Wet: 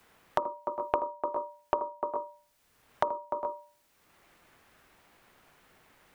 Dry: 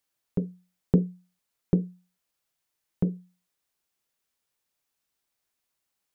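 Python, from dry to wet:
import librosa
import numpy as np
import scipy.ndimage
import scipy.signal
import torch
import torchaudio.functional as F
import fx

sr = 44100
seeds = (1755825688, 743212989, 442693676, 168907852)

y = x * np.sin(2.0 * np.pi * 770.0 * np.arange(len(x)) / sr)
y = fx.echo_multitap(y, sr, ms=(55, 80, 298, 406, 425), db=(-17.0, -8.5, -9.0, -15.0, -15.5))
y = fx.band_squash(y, sr, depth_pct=100)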